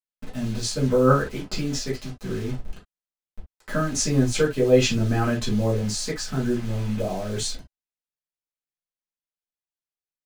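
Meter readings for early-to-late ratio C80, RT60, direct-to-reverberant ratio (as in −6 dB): 44.5 dB, non-exponential decay, −6.5 dB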